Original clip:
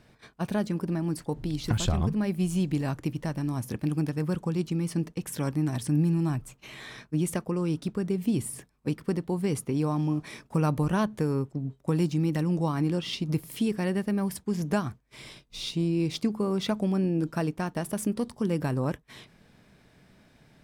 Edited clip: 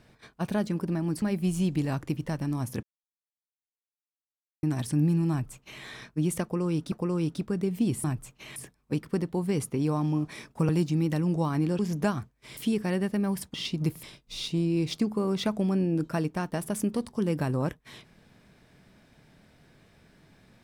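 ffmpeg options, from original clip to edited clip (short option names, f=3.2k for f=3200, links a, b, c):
-filter_complex "[0:a]asplit=12[a][b][c][d][e][f][g][h][i][j][k][l];[a]atrim=end=1.222[m];[b]atrim=start=2.178:end=3.79,asetpts=PTS-STARTPTS,afade=t=out:st=1.608:d=0.004:c=hsin[n];[c]atrim=start=3.79:end=5.59,asetpts=PTS-STARTPTS,volume=0[o];[d]atrim=start=5.59:end=7.882,asetpts=PTS-STARTPTS,afade=t=in:d=0.004:c=hsin[p];[e]atrim=start=7.388:end=8.512[q];[f]atrim=start=6.268:end=6.792[r];[g]atrim=start=8.508:end=10.642[s];[h]atrim=start=11.918:end=13.022[t];[i]atrim=start=14.478:end=15.262[u];[j]atrim=start=13.508:end=14.482[v];[k]atrim=start=13.018:end=13.512[w];[l]atrim=start=15.258[x];[n][o][p]concat=n=3:v=0:a=1[y];[m][y]acrossfade=d=0.004:c1=hsin:c2=hsin[z];[z][q]acrossfade=d=0.004:c1=hsin:c2=hsin[aa];[aa][r]acrossfade=d=0.004:c1=hsin:c2=hsin[ab];[ab][s]acrossfade=d=0.004:c1=hsin:c2=hsin[ac];[ac][t]acrossfade=d=0.004:c1=hsin:c2=hsin[ad];[ad][u]acrossfade=d=0.004:c1=hsin:c2=hsin[ae];[ae][v]acrossfade=d=0.004:c1=hsin:c2=hsin[af];[af][w]acrossfade=d=0.004:c1=hsin:c2=hsin[ag];[ag][x]acrossfade=d=0.004:c1=hsin:c2=hsin"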